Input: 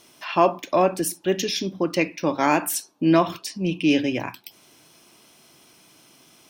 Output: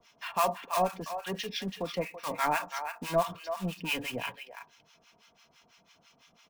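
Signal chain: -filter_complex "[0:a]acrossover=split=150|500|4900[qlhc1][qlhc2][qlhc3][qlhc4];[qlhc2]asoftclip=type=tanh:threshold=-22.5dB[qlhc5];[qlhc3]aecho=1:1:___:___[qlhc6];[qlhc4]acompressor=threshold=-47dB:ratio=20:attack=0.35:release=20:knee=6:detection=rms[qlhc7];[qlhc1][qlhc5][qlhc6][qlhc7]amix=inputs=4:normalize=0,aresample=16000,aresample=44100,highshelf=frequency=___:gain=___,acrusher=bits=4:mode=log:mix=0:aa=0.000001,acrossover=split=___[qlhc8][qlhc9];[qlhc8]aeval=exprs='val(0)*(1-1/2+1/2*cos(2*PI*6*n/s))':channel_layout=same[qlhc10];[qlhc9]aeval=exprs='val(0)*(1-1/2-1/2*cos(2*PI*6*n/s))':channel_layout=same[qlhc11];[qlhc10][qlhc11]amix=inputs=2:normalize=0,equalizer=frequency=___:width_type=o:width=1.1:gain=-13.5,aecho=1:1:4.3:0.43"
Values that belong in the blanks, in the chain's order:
332, 0.422, 4200, -10, 900, 300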